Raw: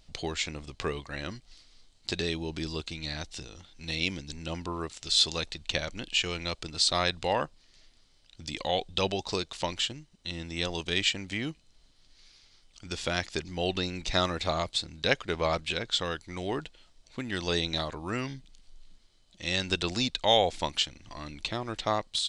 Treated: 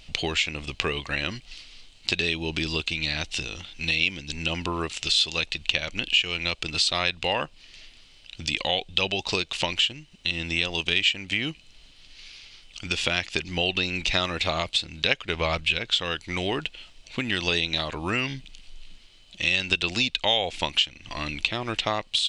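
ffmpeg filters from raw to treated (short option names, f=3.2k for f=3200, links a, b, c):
-filter_complex "[0:a]asettb=1/sr,asplit=3[a][b][c];[a]atrim=end=15.164[d];[b]atrim=start=15.16:end=15.78,asetpts=PTS-STARTPTS,afade=t=in:d=0.004:c=qsin,afade=t=out:st=0.616:d=0.004:c=qsin,asubboost=boost=9:cutoff=180[e];[c]atrim=start=15.776[f];[d][e]acrossfade=d=0.004:c1=hsin:c2=qsin[g];[g][f]acrossfade=d=0.004:c1=qsin:c2=hsin,equalizer=f=2.7k:w=1.9:g=13,acompressor=threshold=-33dB:ratio=2.5,volume=8dB"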